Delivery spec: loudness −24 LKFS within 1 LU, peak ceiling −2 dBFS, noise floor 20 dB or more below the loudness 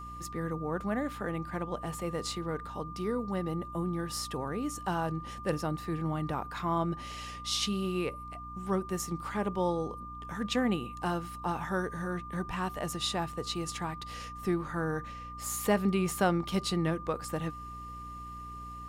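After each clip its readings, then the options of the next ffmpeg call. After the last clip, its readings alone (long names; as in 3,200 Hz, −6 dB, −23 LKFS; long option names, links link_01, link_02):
mains hum 60 Hz; hum harmonics up to 300 Hz; level of the hum −45 dBFS; interfering tone 1,200 Hz; level of the tone −42 dBFS; integrated loudness −34.0 LKFS; sample peak −14.5 dBFS; target loudness −24.0 LKFS
→ -af "bandreject=frequency=60:width_type=h:width=6,bandreject=frequency=120:width_type=h:width=6,bandreject=frequency=180:width_type=h:width=6,bandreject=frequency=240:width_type=h:width=6,bandreject=frequency=300:width_type=h:width=6"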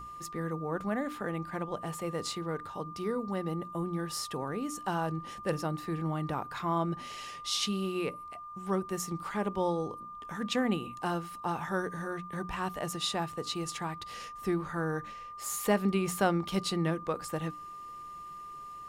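mains hum none found; interfering tone 1,200 Hz; level of the tone −42 dBFS
→ -af "bandreject=frequency=1200:width=30"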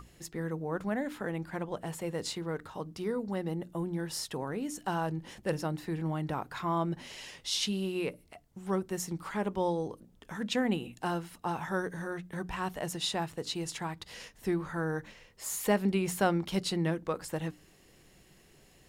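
interfering tone none found; integrated loudness −34.5 LKFS; sample peak −15.0 dBFS; target loudness −24.0 LKFS
→ -af "volume=10.5dB"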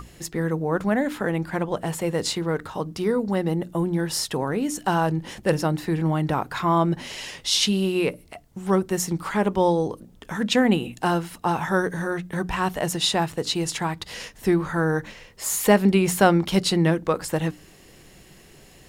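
integrated loudness −24.0 LKFS; sample peak −4.5 dBFS; background noise floor −51 dBFS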